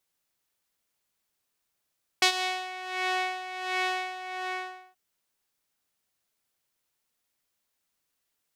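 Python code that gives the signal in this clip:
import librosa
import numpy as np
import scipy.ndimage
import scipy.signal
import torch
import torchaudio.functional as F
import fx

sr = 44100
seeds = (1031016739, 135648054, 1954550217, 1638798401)

y = fx.sub_patch_tremolo(sr, seeds[0], note=78, wave='triangle', wave2='saw', interval_st=0, detune_cents=3, level2_db=-8, sub_db=-5.5, noise_db=-27, kind='bandpass', cutoff_hz=1500.0, q=1.2, env_oct=1.5, env_decay_s=0.54, env_sustain_pct=40, attack_ms=4.8, decay_s=0.09, sustain_db=-17.5, release_s=0.85, note_s=1.88, lfo_hz=1.4, tremolo_db=12.5)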